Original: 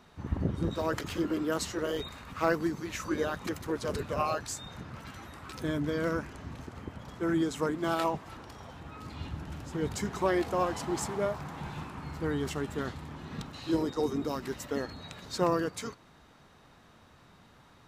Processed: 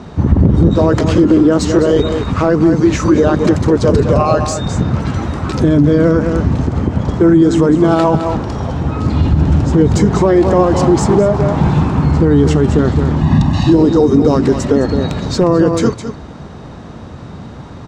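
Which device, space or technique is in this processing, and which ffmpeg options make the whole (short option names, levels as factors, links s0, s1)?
mastering chain: -filter_complex "[0:a]lowpass=f=8200:w=0.5412,lowpass=f=8200:w=1.3066,bass=f=250:g=1,treble=f=4000:g=5,asettb=1/sr,asplit=3[s0][s1][s2];[s0]atrim=end=13.214[s3];[s1]atrim=start=13.21:end=13.74,asetpts=PTS-STARTPTS,afade=t=in:d=0.004:c=qsin,afade=t=out:st=0.526:d=0.004:c=qsin,aecho=1:1:1.1:0.91,atrim=end_sample=23373[s4];[s2]atrim=start=13.736[s5];[s3][s4]acrossfade=d=0.004:c1=hsin:c2=qsin[s6];[s6][s5]acrossfade=d=0.004:c1=qsin:c2=hsin,highpass=40,equalizer=f=4600:t=o:w=2:g=2.5,aecho=1:1:211:0.266,acompressor=threshold=0.0224:ratio=2,asoftclip=type=tanh:threshold=0.0841,tiltshelf=f=1100:g=9.5,asoftclip=type=hard:threshold=0.133,alimiter=level_in=11.2:limit=0.891:release=50:level=0:latency=1,volume=0.891"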